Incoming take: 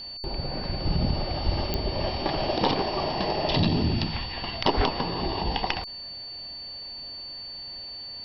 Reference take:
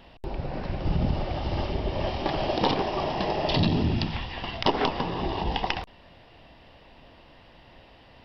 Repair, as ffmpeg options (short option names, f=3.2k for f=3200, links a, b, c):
-filter_complex "[0:a]adeclick=t=4,bandreject=f=4.5k:w=30,asplit=3[a][b][c];[a]afade=t=out:st=1.45:d=0.02[d];[b]highpass=f=140:w=0.5412,highpass=f=140:w=1.3066,afade=t=in:st=1.45:d=0.02,afade=t=out:st=1.57:d=0.02[e];[c]afade=t=in:st=1.57:d=0.02[f];[d][e][f]amix=inputs=3:normalize=0,asplit=3[g][h][i];[g]afade=t=out:st=4.76:d=0.02[j];[h]highpass=f=140:w=0.5412,highpass=f=140:w=1.3066,afade=t=in:st=4.76:d=0.02,afade=t=out:st=4.88:d=0.02[k];[i]afade=t=in:st=4.88:d=0.02[l];[j][k][l]amix=inputs=3:normalize=0"